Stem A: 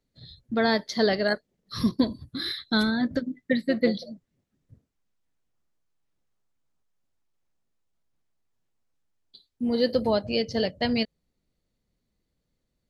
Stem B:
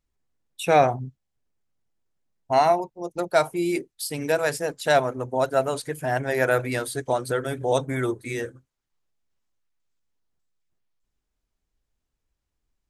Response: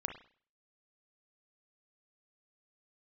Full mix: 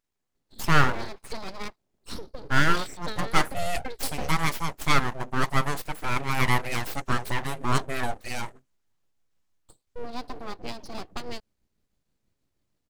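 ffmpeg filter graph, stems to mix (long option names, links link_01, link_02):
-filter_complex "[0:a]lowshelf=frequency=370:gain=6,acompressor=threshold=-26dB:ratio=6,tremolo=f=6.2:d=0.52,adelay=350,volume=-1.5dB[link_01];[1:a]lowshelf=frequency=130:gain=-10.5,volume=1.5dB[link_02];[link_01][link_02]amix=inputs=2:normalize=0,aeval=exprs='abs(val(0))':channel_layout=same"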